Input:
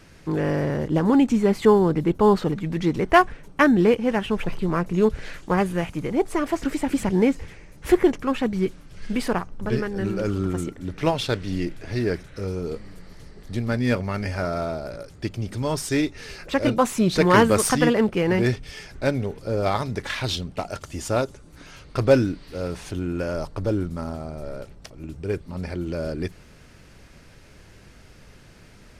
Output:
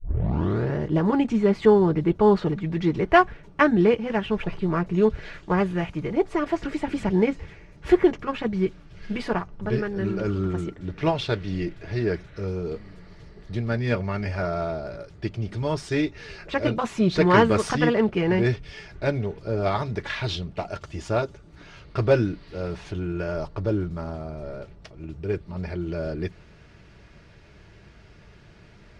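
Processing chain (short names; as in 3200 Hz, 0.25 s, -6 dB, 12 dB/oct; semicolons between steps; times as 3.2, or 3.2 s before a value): tape start at the beginning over 0.74 s; LPF 4300 Hz 12 dB/oct; notch comb 260 Hz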